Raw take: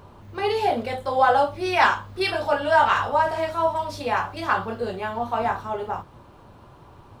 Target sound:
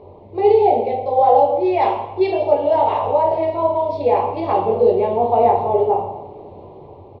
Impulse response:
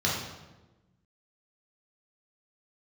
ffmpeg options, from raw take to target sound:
-filter_complex "[0:a]firequalizer=gain_entry='entry(180,0);entry(430,15);entry(870,8);entry(1500,-23);entry(2200,2);entry(3900,-5);entry(5900,-20);entry(9400,-26)':delay=0.05:min_phase=1,dynaudnorm=framelen=150:gausssize=9:maxgain=5.5dB,asplit=2[link_01][link_02];[1:a]atrim=start_sample=2205[link_03];[link_02][link_03]afir=irnorm=-1:irlink=0,volume=-12dB[link_04];[link_01][link_04]amix=inputs=2:normalize=0,volume=-5dB"

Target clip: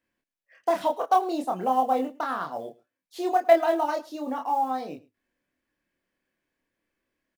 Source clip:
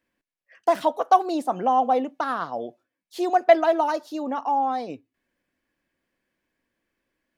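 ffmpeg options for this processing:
ffmpeg -i in.wav -filter_complex "[0:a]acrusher=bits=8:mode=log:mix=0:aa=0.000001,asplit=2[link_01][link_02];[link_02]adelay=27,volume=-3.5dB[link_03];[link_01][link_03]amix=inputs=2:normalize=0,aecho=1:1:107:0.0841,volume=-4.5dB" out.wav

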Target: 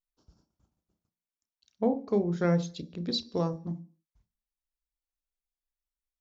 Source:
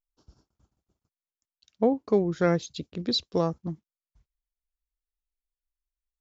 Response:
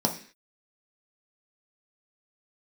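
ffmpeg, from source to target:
-filter_complex "[0:a]asplit=2[link_01][link_02];[1:a]atrim=start_sample=2205,adelay=31[link_03];[link_02][link_03]afir=irnorm=-1:irlink=0,volume=-21dB[link_04];[link_01][link_04]amix=inputs=2:normalize=0,volume=-5dB"

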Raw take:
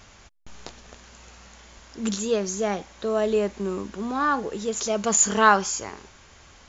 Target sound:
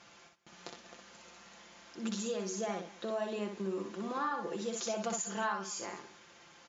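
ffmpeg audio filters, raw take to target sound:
ffmpeg -i in.wav -af "aecho=1:1:5.8:0.63,acompressor=threshold=-25dB:ratio=8,highpass=180,lowpass=6500,aecho=1:1:62|197:0.562|0.119,volume=-7.5dB" out.wav

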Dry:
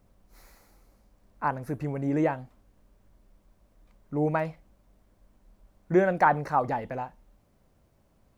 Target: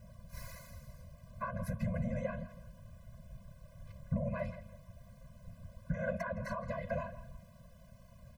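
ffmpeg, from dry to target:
ffmpeg -i in.wav -filter_complex "[0:a]acompressor=threshold=-37dB:ratio=6,alimiter=level_in=10dB:limit=-24dB:level=0:latency=1:release=145,volume=-10dB,afftfilt=real='hypot(re,im)*cos(2*PI*random(0))':imag='hypot(re,im)*sin(2*PI*random(1))':win_size=512:overlap=0.75,asplit=2[link_01][link_02];[link_02]adelay=165,lowpass=frequency=4200:poles=1,volume=-14.5dB,asplit=2[link_03][link_04];[link_04]adelay=165,lowpass=frequency=4200:poles=1,volume=0.3,asplit=2[link_05][link_06];[link_06]adelay=165,lowpass=frequency=4200:poles=1,volume=0.3[link_07];[link_03][link_05][link_07]amix=inputs=3:normalize=0[link_08];[link_01][link_08]amix=inputs=2:normalize=0,afftfilt=real='re*eq(mod(floor(b*sr/1024/240),2),0)':imag='im*eq(mod(floor(b*sr/1024/240),2),0)':win_size=1024:overlap=0.75,volume=15.5dB" out.wav

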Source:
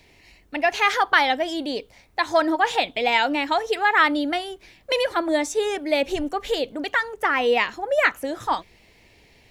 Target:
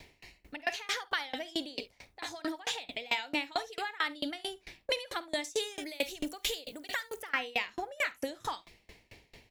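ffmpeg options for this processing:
ffmpeg -i in.wav -filter_complex "[0:a]asettb=1/sr,asplit=3[link_01][link_02][link_03];[link_01]atrim=end=5.444[link_04];[link_02]atrim=start=5.44:end=7.33,asetpts=PTS-STARTPTS,afade=type=in:duration=0.004:curve=qsin,afade=type=out:start_time=1.886:duration=0.004:curve=qsin,aemphasis=mode=production:type=75fm[link_05];[link_03]atrim=start=7.326[link_06];[link_04][link_05]acrossfade=duration=0.004:curve1=hsin:curve2=qsin[link_07];[link_07][link_06]acrossfade=duration=0.004:curve1=qsin:curve2=hsin,alimiter=limit=-13dB:level=0:latency=1:release=64,acrossover=split=2300|5700[link_08][link_09][link_10];[link_08]acompressor=threshold=-35dB:ratio=4[link_11];[link_09]acompressor=threshold=-31dB:ratio=4[link_12];[link_10]acompressor=threshold=-43dB:ratio=4[link_13];[link_11][link_12][link_13]amix=inputs=3:normalize=0,aecho=1:1:50|70:0.2|0.2,aeval=exprs='val(0)*pow(10,-27*if(lt(mod(4.5*n/s,1),2*abs(4.5)/1000),1-mod(4.5*n/s,1)/(2*abs(4.5)/1000),(mod(4.5*n/s,1)-2*abs(4.5)/1000)/(1-2*abs(4.5)/1000))/20)':channel_layout=same,volume=4.5dB" out.wav

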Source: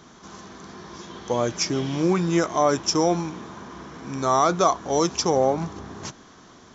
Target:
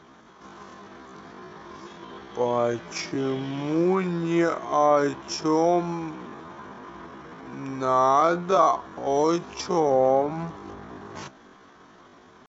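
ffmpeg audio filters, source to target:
ffmpeg -i in.wav -af "bass=frequency=250:gain=-6,treble=frequency=4000:gain=-13,atempo=0.54" out.wav

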